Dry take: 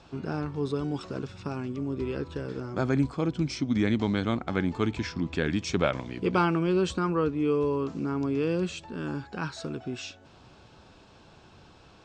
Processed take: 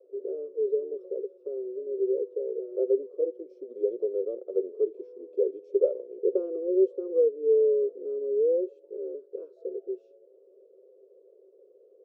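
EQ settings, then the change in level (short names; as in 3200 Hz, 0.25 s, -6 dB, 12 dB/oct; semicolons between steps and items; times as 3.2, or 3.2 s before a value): rippled Chebyshev high-pass 380 Hz, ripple 3 dB; elliptic low-pass 520 Hz, stop band 40 dB; tilt -3 dB/oct; +6.0 dB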